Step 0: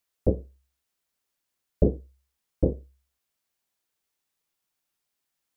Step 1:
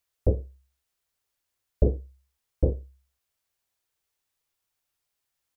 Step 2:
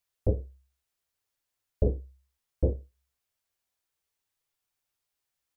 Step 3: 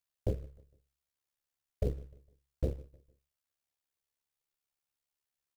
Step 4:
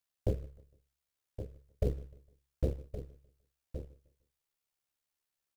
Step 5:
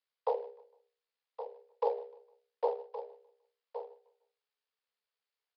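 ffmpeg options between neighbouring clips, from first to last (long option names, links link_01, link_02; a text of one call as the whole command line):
ffmpeg -i in.wav -filter_complex "[0:a]firequalizer=gain_entry='entry(110,0);entry(160,-9);entry(250,-9);entry(450,-5)':delay=0.05:min_phase=1,asplit=2[link_01][link_02];[link_02]alimiter=limit=-20dB:level=0:latency=1:release=22,volume=-2dB[link_03];[link_01][link_03]amix=inputs=2:normalize=0" out.wav
ffmpeg -i in.wav -af "flanger=delay=6.7:depth=8.6:regen=-45:speed=0.65:shape=sinusoidal,volume=1dB" out.wav
ffmpeg -i in.wav -filter_complex "[0:a]aecho=1:1:152|304|456:0.075|0.0277|0.0103,asplit=2[link_01][link_02];[link_02]acrusher=bits=4:mode=log:mix=0:aa=0.000001,volume=-6dB[link_03];[link_01][link_03]amix=inputs=2:normalize=0,tremolo=f=70:d=0.71,volume=-7dB" out.wav
ffmpeg -i in.wav -af "aecho=1:1:1118:0.299,volume=1dB" out.wav
ffmpeg -i in.wav -af "bandreject=frequency=50:width_type=h:width=6,bandreject=frequency=100:width_type=h:width=6,bandreject=frequency=150:width_type=h:width=6,bandreject=frequency=200:width_type=h:width=6,bandreject=frequency=250:width_type=h:width=6,bandreject=frequency=300:width_type=h:width=6,bandreject=frequency=350:width_type=h:width=6,afreqshift=410,aresample=11025,aresample=44100" out.wav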